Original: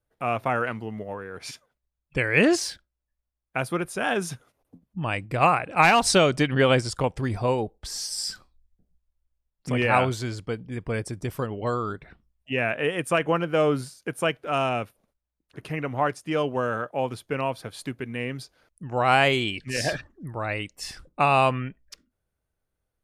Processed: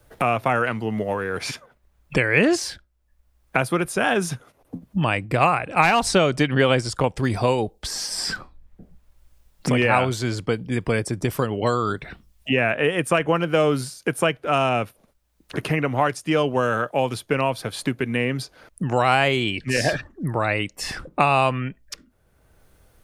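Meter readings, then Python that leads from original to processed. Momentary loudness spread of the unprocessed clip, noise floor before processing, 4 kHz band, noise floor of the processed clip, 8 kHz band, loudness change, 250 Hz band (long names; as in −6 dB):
16 LU, −83 dBFS, +2.5 dB, −63 dBFS, +2.0 dB, +3.0 dB, +4.0 dB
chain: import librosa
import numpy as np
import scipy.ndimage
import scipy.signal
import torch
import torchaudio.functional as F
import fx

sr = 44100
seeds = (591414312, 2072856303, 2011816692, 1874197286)

y = fx.band_squash(x, sr, depth_pct=70)
y = F.gain(torch.from_numpy(y), 4.0).numpy()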